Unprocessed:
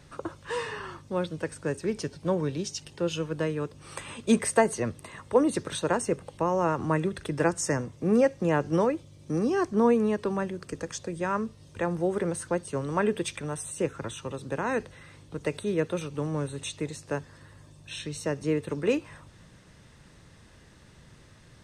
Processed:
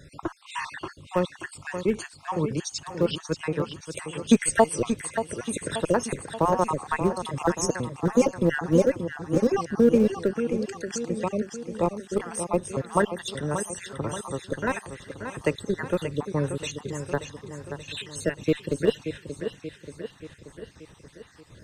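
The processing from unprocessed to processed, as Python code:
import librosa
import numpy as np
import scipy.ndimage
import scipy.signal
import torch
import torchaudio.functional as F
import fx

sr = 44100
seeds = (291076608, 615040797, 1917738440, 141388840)

p1 = fx.spec_dropout(x, sr, seeds[0], share_pct=56)
p2 = fx.echo_feedback(p1, sr, ms=581, feedback_pct=56, wet_db=-9)
p3 = fx.schmitt(p2, sr, flips_db=-21.0)
p4 = p2 + (p3 * 10.0 ** (-11.5 / 20.0))
y = p4 * 10.0 ** (5.0 / 20.0)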